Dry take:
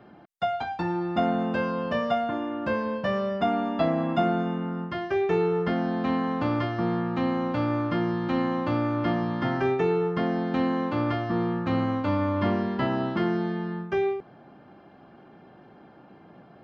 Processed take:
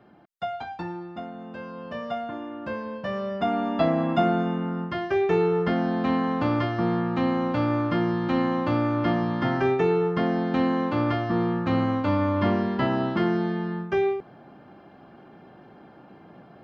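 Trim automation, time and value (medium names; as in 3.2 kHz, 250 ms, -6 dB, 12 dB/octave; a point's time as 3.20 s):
0.80 s -4 dB
1.31 s -14 dB
2.17 s -5 dB
2.92 s -5 dB
3.76 s +2 dB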